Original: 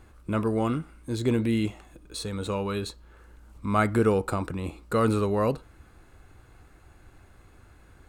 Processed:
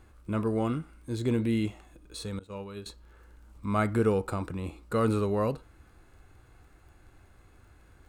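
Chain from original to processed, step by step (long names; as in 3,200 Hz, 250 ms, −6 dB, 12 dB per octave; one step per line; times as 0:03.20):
harmonic and percussive parts rebalanced percussive −4 dB
0:02.39–0:02.86: downward expander −22 dBFS
surface crackle 16 per second −52 dBFS
level −2 dB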